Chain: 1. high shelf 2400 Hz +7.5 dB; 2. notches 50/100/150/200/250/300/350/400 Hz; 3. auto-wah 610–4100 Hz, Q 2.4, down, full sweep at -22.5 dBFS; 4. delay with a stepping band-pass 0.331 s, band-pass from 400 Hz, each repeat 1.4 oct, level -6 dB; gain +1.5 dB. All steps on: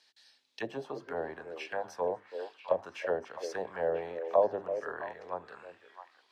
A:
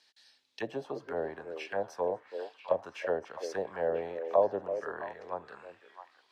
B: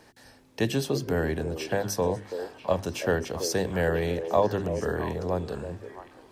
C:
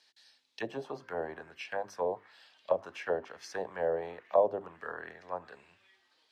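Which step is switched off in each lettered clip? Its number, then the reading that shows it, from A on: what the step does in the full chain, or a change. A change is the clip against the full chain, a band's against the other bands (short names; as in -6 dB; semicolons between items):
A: 2, 250 Hz band +2.0 dB; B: 3, 125 Hz band +15.5 dB; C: 4, echo-to-direct -10.5 dB to none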